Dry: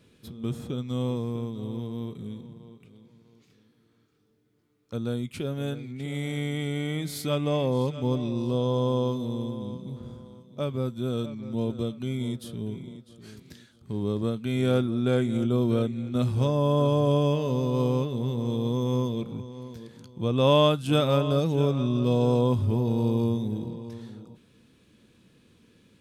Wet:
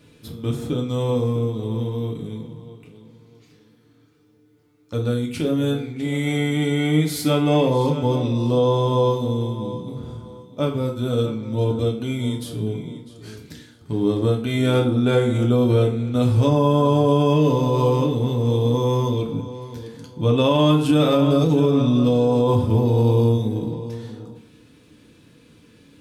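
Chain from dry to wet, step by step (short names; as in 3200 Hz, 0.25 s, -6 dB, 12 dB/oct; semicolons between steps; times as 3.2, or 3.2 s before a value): FDN reverb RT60 0.54 s, low-frequency decay 0.9×, high-frequency decay 0.75×, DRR 0.5 dB; limiter -14.5 dBFS, peak gain reduction 8.5 dB; gain +5.5 dB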